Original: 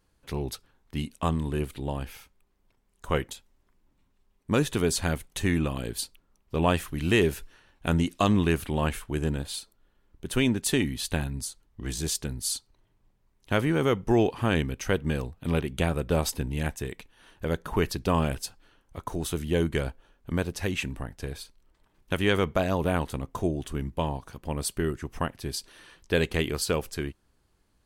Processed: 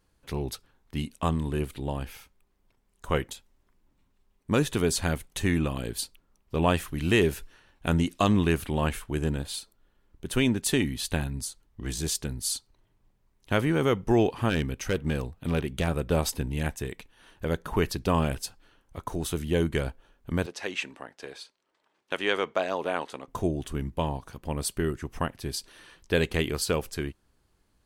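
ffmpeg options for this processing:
ffmpeg -i in.wav -filter_complex "[0:a]asettb=1/sr,asplit=3[link_01][link_02][link_03];[link_01]atrim=end=14.494[link_04];[link_02]atrim=start=14.49:end=15.88,asetpts=PTS-STARTPTS,afade=type=in:duration=0.004:curve=qsin,afade=type=out:start_time=1.386:duration=0.004:curve=qsin,asoftclip=type=hard:threshold=-20dB[link_05];[link_03]atrim=start=15.876[link_06];[link_04][link_05]acrossfade=duration=0.004:curve1=hsin:curve2=qsin[link_07];[link_07][link_06]acrossfade=duration=0.004:curve1=qsin:curve2=hsin,asettb=1/sr,asplit=3[link_08][link_09][link_10];[link_08]atrim=end=20.464[link_11];[link_09]atrim=start=20.46:end=23.28,asetpts=PTS-STARTPTS,afade=type=in:duration=0.004:curve=qsin,afade=type=out:start_time=2.816:duration=0.004:curve=qsin,highpass=410,lowpass=6600[link_12];[link_10]atrim=start=23.276[link_13];[link_11][link_12]acrossfade=duration=0.004:curve1=hsin:curve2=qsin[link_14];[link_14][link_13]acrossfade=duration=0.004:curve1=qsin:curve2=hsin" out.wav

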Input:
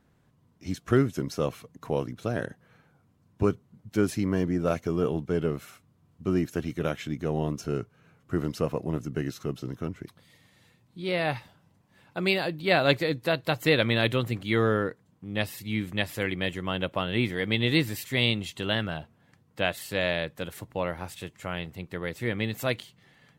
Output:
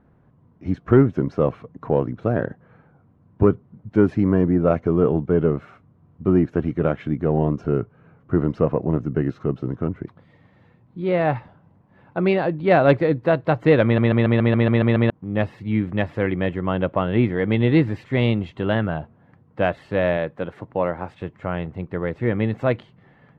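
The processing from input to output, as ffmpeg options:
ffmpeg -i in.wav -filter_complex "[0:a]asettb=1/sr,asplit=3[link_01][link_02][link_03];[link_01]atrim=end=20.174[link_04];[link_02]atrim=start=20.17:end=21.22,asetpts=PTS-STARTPTS,afade=type=in:duration=0.004:curve=qsin,afade=type=out:start_time=1.046:duration=0.004:curve=qsin,highpass=frequency=160:poles=1[link_05];[link_03]atrim=start=21.216[link_06];[link_04][link_05]acrossfade=duration=0.004:curve1=hsin:curve2=qsin[link_07];[link_07][link_06]acrossfade=duration=0.004:curve1=qsin:curve2=hsin,asplit=10[link_08][link_09][link_10][link_11][link_12][link_13][link_14][link_15][link_16][link_17];[link_08]atrim=end=13.982[link_18];[link_09]atrim=start=13.838:end=13.982[link_19];[link_10]atrim=start=13.838:end=13.982[link_20];[link_11]atrim=start=13.838:end=13.982[link_21];[link_12]atrim=start=13.838:end=13.982[link_22];[link_13]atrim=start=13.838:end=13.982[link_23];[link_14]atrim=start=13.838:end=13.982[link_24];[link_15]atrim=start=13.838:end=13.982[link_25];[link_16]atrim=start=13.838:end=13.982[link_26];[link_17]atrim=start=15.098[link_27];[link_18][link_19]acrossfade=duration=0.004:curve1=hsin:curve2=hsin[link_28];[link_28][link_20]acrossfade=duration=0.004:curve1=hsin:curve2=hsin[link_29];[link_29][link_21]acrossfade=duration=0.004:curve1=hsin:curve2=hsin[link_30];[link_30][link_22]acrossfade=duration=0.004:curve1=hsin:curve2=hsin[link_31];[link_31][link_23]acrossfade=duration=0.004:curve1=hsin:curve2=hsin[link_32];[link_32][link_24]acrossfade=duration=0.004:curve1=hsin:curve2=hsin[link_33];[link_33][link_25]acrossfade=duration=0.004:curve1=hsin:curve2=hsin[link_34];[link_34][link_26]acrossfade=duration=0.004:curve1=hsin:curve2=hsin[link_35];[link_35][link_27]acrossfade=duration=0.004:curve1=hsin:curve2=hsin,lowpass=1300,acontrast=75,volume=2dB" out.wav

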